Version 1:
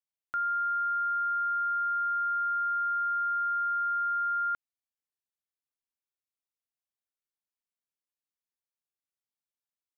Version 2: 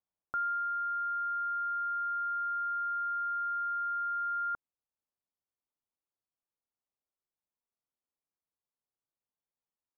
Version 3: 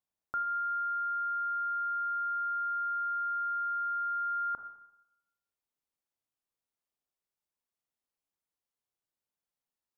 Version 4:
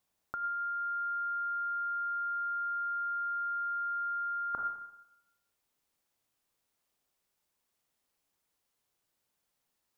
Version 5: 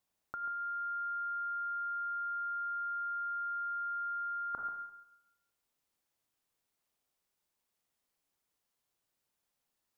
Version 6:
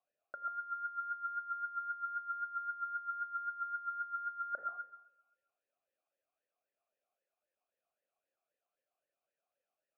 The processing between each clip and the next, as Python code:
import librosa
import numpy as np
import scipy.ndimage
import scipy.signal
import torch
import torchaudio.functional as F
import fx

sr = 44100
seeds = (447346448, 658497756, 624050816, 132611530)

y1 = scipy.signal.sosfilt(scipy.signal.butter(4, 1200.0, 'lowpass', fs=sr, output='sos'), x)
y1 = fx.rider(y1, sr, range_db=4, speed_s=0.5)
y1 = F.gain(torch.from_numpy(y1), 2.5).numpy()
y2 = fx.rev_schroeder(y1, sr, rt60_s=0.87, comb_ms=26, drr_db=7.5)
y3 = fx.over_compress(y2, sr, threshold_db=-37.0, ratio=-0.5)
y3 = F.gain(torch.from_numpy(y3), 4.5).numpy()
y4 = y3 + 10.0 ** (-11.0 / 20.0) * np.pad(y3, (int(137 * sr / 1000.0), 0))[:len(y3)]
y4 = F.gain(torch.from_numpy(y4), -3.5).numpy()
y5 = fx.air_absorb(y4, sr, metres=380.0)
y5 = fx.vowel_sweep(y5, sr, vowels='a-e', hz=3.8)
y5 = F.gain(torch.from_numpy(y5), 11.5).numpy()